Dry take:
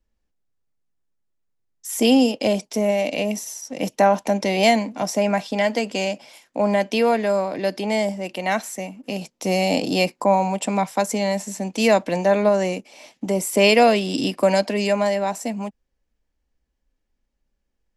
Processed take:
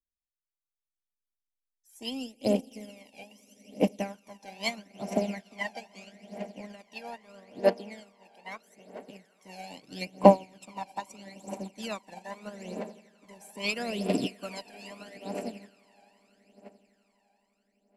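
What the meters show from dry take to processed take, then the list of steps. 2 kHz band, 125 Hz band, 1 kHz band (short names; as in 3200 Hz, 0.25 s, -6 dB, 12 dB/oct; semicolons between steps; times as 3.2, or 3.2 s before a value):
-14.0 dB, -9.5 dB, -11.5 dB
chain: swelling echo 85 ms, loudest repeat 8, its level -16.5 dB; harmonic-percussive split harmonic -4 dB; phaser 0.78 Hz, delay 1.3 ms, feedback 71%; upward expander 2.5:1, over -29 dBFS; gain -1.5 dB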